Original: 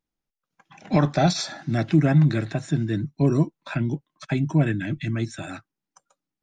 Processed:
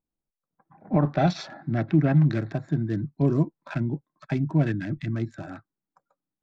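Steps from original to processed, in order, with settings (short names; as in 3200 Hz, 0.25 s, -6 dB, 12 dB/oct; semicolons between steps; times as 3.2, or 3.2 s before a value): Wiener smoothing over 15 samples; LPF 1200 Hz 12 dB/oct, from 1.05 s 3300 Hz, from 2.26 s 6400 Hz; gain -2 dB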